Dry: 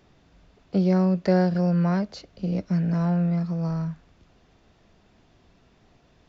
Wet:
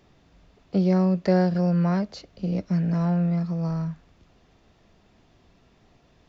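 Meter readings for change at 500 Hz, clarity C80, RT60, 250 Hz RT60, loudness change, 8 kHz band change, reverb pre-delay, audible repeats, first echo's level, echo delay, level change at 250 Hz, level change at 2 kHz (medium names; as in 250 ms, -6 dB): 0.0 dB, no reverb, no reverb, no reverb, 0.0 dB, no reading, no reverb, no echo, no echo, no echo, 0.0 dB, -1.0 dB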